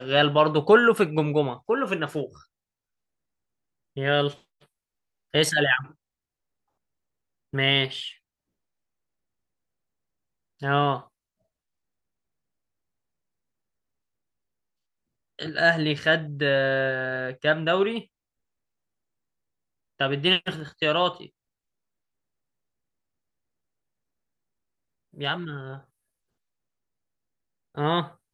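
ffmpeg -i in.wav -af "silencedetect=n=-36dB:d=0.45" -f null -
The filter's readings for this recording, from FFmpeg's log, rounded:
silence_start: 2.26
silence_end: 3.97 | silence_duration: 1.71
silence_start: 4.34
silence_end: 5.34 | silence_duration: 1.00
silence_start: 5.86
silence_end: 7.53 | silence_duration: 1.68
silence_start: 8.11
silence_end: 10.62 | silence_duration: 2.51
silence_start: 11.00
silence_end: 15.39 | silence_duration: 4.39
silence_start: 18.01
silence_end: 20.00 | silence_duration: 1.99
silence_start: 21.26
silence_end: 25.18 | silence_duration: 3.92
silence_start: 25.77
silence_end: 27.77 | silence_duration: 2.00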